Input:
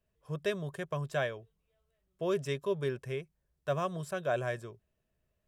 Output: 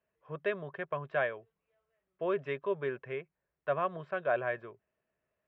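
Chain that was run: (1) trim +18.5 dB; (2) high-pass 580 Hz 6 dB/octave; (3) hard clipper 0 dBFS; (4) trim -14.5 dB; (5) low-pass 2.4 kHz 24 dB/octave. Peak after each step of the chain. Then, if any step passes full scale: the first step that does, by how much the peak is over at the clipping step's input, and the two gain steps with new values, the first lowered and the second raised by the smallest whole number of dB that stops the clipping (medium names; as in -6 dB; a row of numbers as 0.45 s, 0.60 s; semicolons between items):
-1.0 dBFS, -3.0 dBFS, -3.0 dBFS, -17.5 dBFS, -18.0 dBFS; nothing clips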